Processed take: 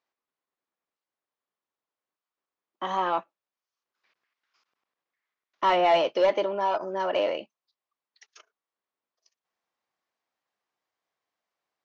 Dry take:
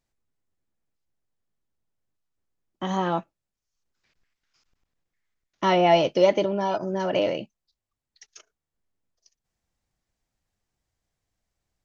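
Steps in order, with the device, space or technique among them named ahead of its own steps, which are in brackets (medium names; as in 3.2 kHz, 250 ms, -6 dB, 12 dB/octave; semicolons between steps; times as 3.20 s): intercom (band-pass 430–4100 Hz; peaking EQ 1.1 kHz +6 dB 0.45 oct; saturation -14 dBFS, distortion -16 dB)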